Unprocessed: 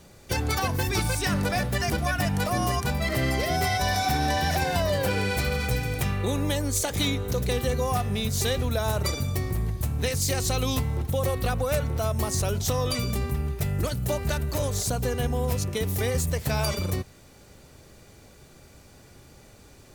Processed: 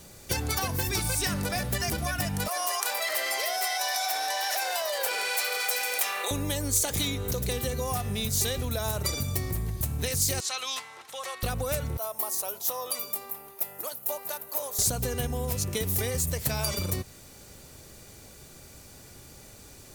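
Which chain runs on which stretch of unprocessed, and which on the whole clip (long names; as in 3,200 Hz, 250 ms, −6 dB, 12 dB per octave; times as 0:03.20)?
0:02.48–0:06.31: high-pass filter 580 Hz 24 dB per octave + flanger 2 Hz, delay 2.5 ms, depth 8.4 ms, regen −80% + envelope flattener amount 70%
0:10.40–0:11.43: Chebyshev high-pass filter 1,200 Hz + high-frequency loss of the air 77 metres
0:11.97–0:14.79: high-pass filter 820 Hz + flat-topped bell 3,500 Hz −11 dB 3 octaves
whole clip: downward compressor, threshold −27 dBFS; high-shelf EQ 5,100 Hz +10.5 dB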